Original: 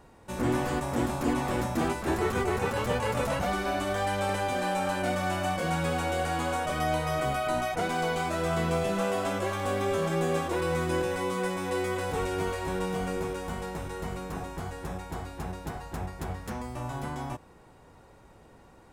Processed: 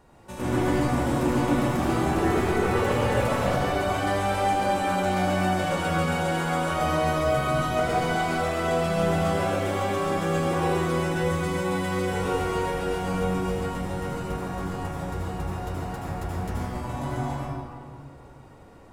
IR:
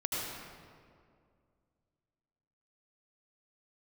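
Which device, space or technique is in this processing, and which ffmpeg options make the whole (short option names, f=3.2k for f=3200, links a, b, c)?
stairwell: -filter_complex "[1:a]atrim=start_sample=2205[a];[0:a][a]afir=irnorm=-1:irlink=0,volume=-1.5dB"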